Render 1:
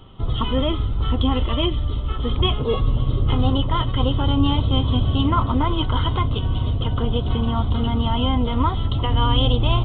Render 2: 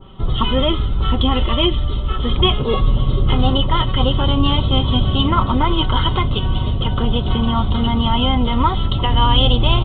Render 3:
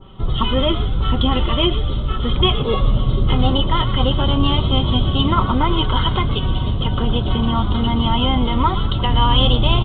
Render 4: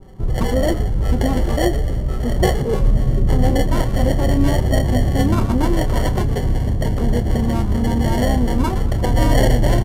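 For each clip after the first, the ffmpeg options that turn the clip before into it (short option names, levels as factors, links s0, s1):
-af "aecho=1:1:5.3:0.35,adynamicequalizer=threshold=0.0178:dfrequency=1500:dqfactor=0.7:tfrequency=1500:tqfactor=0.7:attack=5:release=100:ratio=0.375:range=1.5:mode=boostabove:tftype=highshelf,volume=1.58"
-filter_complex "[0:a]asplit=5[s0][s1][s2][s3][s4];[s1]adelay=118,afreqshift=87,volume=0.2[s5];[s2]adelay=236,afreqshift=174,volume=0.0794[s6];[s3]adelay=354,afreqshift=261,volume=0.032[s7];[s4]adelay=472,afreqshift=348,volume=0.0127[s8];[s0][s5][s6][s7][s8]amix=inputs=5:normalize=0,volume=0.891"
-filter_complex "[0:a]acrossover=split=950[s0][s1];[s1]acrusher=samples=35:mix=1:aa=0.000001[s2];[s0][s2]amix=inputs=2:normalize=0,asplit=2[s3][s4];[s4]adelay=29,volume=0.266[s5];[s3][s5]amix=inputs=2:normalize=0,aresample=32000,aresample=44100"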